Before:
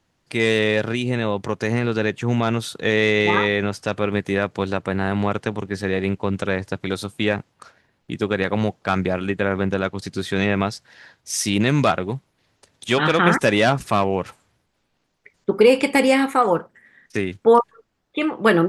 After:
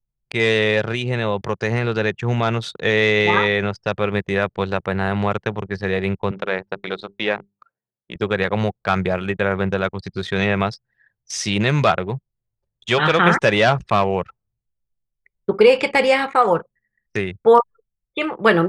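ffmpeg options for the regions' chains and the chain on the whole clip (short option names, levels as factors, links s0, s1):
-filter_complex "[0:a]asettb=1/sr,asplit=3[s0][s1][s2];[s0]atrim=end=6.314[s3];[s1]atrim=start=6.31:end=8.16,asetpts=PTS-STARTPTS,afade=t=in:d=0.004:c=qsin,afade=t=out:st=1.846:d=0.004:c=qsin,aeval=exprs='if(lt(val(0),0),0.708*val(0),val(0))':c=same,highpass=230,lowpass=4800,bandreject=f=50:t=h:w=6,bandreject=f=100:t=h:w=6,bandreject=f=150:t=h:w=6,bandreject=f=200:t=h:w=6,bandreject=f=250:t=h:w=6,bandreject=f=300:t=h:w=6,bandreject=f=350:t=h:w=6,bandreject=f=400:t=h:w=6[s4];[s2]atrim=start=8.156[s5];[s3][s4]acrossfade=d=0.004:c1=hsin:c2=qsin[s6];[s6][s5]acrossfade=d=0.004:c1=qsin:c2=hsin,acrossover=split=6600[s7][s8];[s8]acompressor=threshold=0.00158:ratio=4:attack=1:release=60[s9];[s7][s9]amix=inputs=2:normalize=0,anlmdn=6.31,equalizer=f=270:t=o:w=0.42:g=-12.5,volume=1.33"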